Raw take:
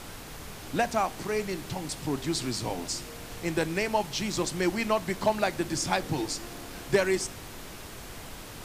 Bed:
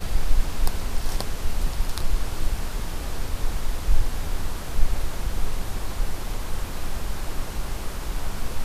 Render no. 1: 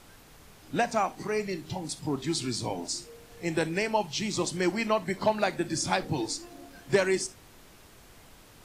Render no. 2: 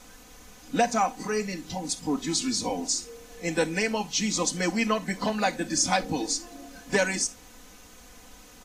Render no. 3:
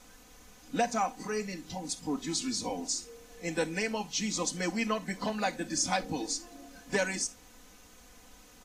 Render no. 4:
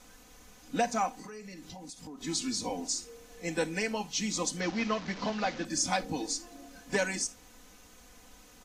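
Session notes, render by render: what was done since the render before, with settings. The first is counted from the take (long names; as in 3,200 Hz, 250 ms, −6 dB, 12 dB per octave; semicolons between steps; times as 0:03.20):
noise reduction from a noise print 11 dB
parametric band 6,400 Hz +8 dB 0.34 octaves; comb filter 4 ms, depth 94%
level −5.5 dB
0:01.09–0:02.21: downward compressor, threshold −42 dBFS; 0:04.60–0:05.65: linear delta modulator 32 kbit/s, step −36.5 dBFS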